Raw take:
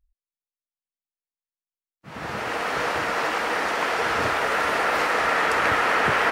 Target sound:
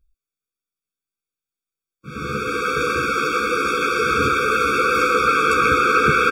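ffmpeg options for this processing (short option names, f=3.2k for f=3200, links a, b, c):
-filter_complex "[0:a]asplit=2[a][b];[b]adelay=14,volume=-4.5dB[c];[a][c]amix=inputs=2:normalize=0,afftfilt=real='re*eq(mod(floor(b*sr/1024/540),2),0)':imag='im*eq(mod(floor(b*sr/1024/540),2),0)':win_size=1024:overlap=0.75,volume=6.5dB"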